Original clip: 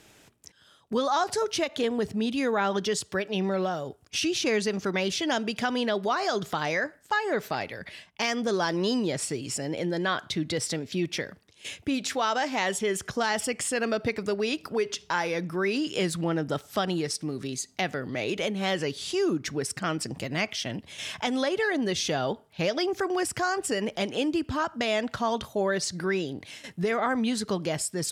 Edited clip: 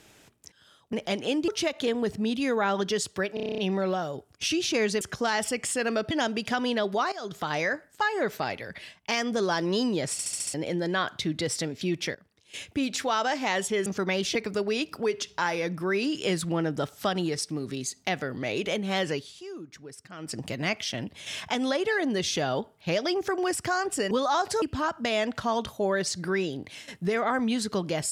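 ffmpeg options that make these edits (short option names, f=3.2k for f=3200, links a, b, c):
-filter_complex "[0:a]asplit=27[a][b][c][d][e][f][g][h][i][j][k][l][m][n][o][p][q][r][s][t][u][v][w][x][y][z][aa];[a]atrim=end=0.932[ab];[b]atrim=start=23.828:end=24.382[ac];[c]atrim=start=1.438:end=3.332[ad];[d]atrim=start=3.298:end=3.332[ae];[e]atrim=start=3.298:end=3.332[af];[f]atrim=start=3.298:end=3.332[ag];[g]atrim=start=3.298:end=3.332[ah];[h]atrim=start=3.298:end=3.332[ai];[i]atrim=start=3.298:end=3.332[aj];[j]atrim=start=3.298:end=3.332[ak];[k]atrim=start=3.298:end=4.732[al];[l]atrim=start=12.968:end=14.072[am];[m]atrim=start=5.218:end=6.23,asetpts=PTS-STARTPTS,afade=t=out:st=1.008:d=0.004:c=hsin:silence=0.158489[an];[n]atrim=start=6.23:end=9.302,asetpts=PTS-STARTPTS,afade=t=in:d=0.42:silence=0.158489[ao];[o]atrim=start=9.228:end=9.302[ap];[p]atrim=start=9.228:end=9.302[aq];[q]atrim=start=9.228:end=9.302[ar];[r]atrim=start=9.228:end=9.302[as];[s]atrim=start=9.228:end=9.302[at];[t]atrim=start=9.648:end=11.26,asetpts=PTS-STARTPTS,afade=t=out:st=1.608:d=0.004:c=hsin:silence=0.158489[au];[u]atrim=start=11.26:end=12.972,asetpts=PTS-STARTPTS,afade=t=in:d=0.51:silence=0.158489[av];[v]atrim=start=4.728:end=5.222[aw];[w]atrim=start=14.068:end=19.05,asetpts=PTS-STARTPTS,afade=t=out:st=4.782:d=0.2:silence=0.188365[ax];[x]atrim=start=19.05:end=19.9,asetpts=PTS-STARTPTS,volume=-14.5dB[ay];[y]atrim=start=19.9:end=23.832,asetpts=PTS-STARTPTS,afade=t=in:d=0.2:silence=0.188365[az];[z]atrim=start=0.928:end=1.442[ba];[aa]atrim=start=24.378[bb];[ab][ac]acrossfade=d=0.004:c1=hsin:c2=hsin[bc];[bc][ad]acrossfade=d=0.004:c1=hsin:c2=hsin[bd];[bd][ae]acrossfade=d=0.004:c1=hsin:c2=hsin[be];[be][af]acrossfade=d=0.004:c1=hsin:c2=hsin[bf];[bf][ag]acrossfade=d=0.004:c1=hsin:c2=hsin[bg];[bg][ah]acrossfade=d=0.004:c1=hsin:c2=hsin[bh];[bh][ai]acrossfade=d=0.004:c1=hsin:c2=hsin[bi];[bi][aj]acrossfade=d=0.004:c1=hsin:c2=hsin[bj];[bj][ak]acrossfade=d=0.004:c1=hsin:c2=hsin[bk];[bk][al]acrossfade=d=0.004:c1=hsin:c2=hsin[bl];[bl][am]acrossfade=d=0.004:c1=hsin:c2=hsin[bm];[an][ao]concat=n=2:v=0:a=1[bn];[bm][bn]acrossfade=d=0.004:c1=hsin:c2=hsin[bo];[bo][ap]acrossfade=d=0.004:c1=hsin:c2=hsin[bp];[bp][aq]acrossfade=d=0.004:c1=hsin:c2=hsin[bq];[bq][ar]acrossfade=d=0.004:c1=hsin:c2=hsin[br];[br][as]acrossfade=d=0.004:c1=hsin:c2=hsin[bs];[bs][at]acrossfade=d=0.004:c1=hsin:c2=hsin[bt];[au][av]concat=n=2:v=0:a=1[bu];[bt][bu]acrossfade=d=0.004:c1=hsin:c2=hsin[bv];[bv][aw]acrossfade=d=0.004:c1=hsin:c2=hsin[bw];[ax][ay][az]concat=n=3:v=0:a=1[bx];[bw][bx]acrossfade=d=0.004:c1=hsin:c2=hsin[by];[by][ba]acrossfade=d=0.004:c1=hsin:c2=hsin[bz];[bz][bb]acrossfade=d=0.004:c1=hsin:c2=hsin"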